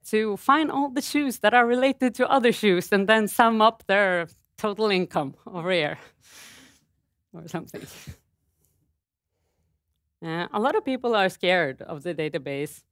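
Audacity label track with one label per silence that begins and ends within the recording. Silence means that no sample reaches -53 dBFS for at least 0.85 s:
8.650000	10.220000	silence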